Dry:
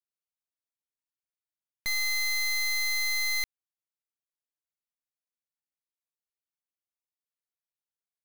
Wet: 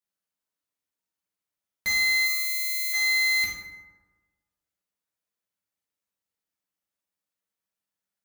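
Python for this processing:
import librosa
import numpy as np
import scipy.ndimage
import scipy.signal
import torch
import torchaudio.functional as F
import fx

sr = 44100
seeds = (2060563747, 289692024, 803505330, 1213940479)

y = scipy.signal.sosfilt(scipy.signal.butter(2, 54.0, 'highpass', fs=sr, output='sos'), x)
y = fx.pre_emphasis(y, sr, coefficient=0.9, at=(2.25, 2.92), fade=0.02)
y = fx.rev_fdn(y, sr, rt60_s=1.3, lf_ratio=1.0, hf_ratio=0.45, size_ms=31.0, drr_db=-4.0)
y = y * 10.0 ** (1.0 / 20.0)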